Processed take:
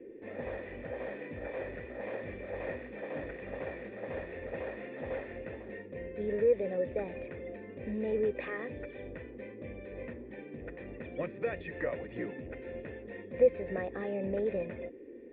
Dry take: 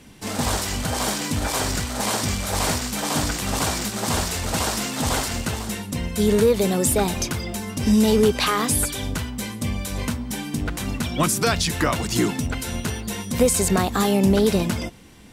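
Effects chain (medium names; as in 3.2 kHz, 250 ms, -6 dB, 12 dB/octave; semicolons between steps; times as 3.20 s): band noise 230–420 Hz -34 dBFS; cascade formant filter e; trim -1.5 dB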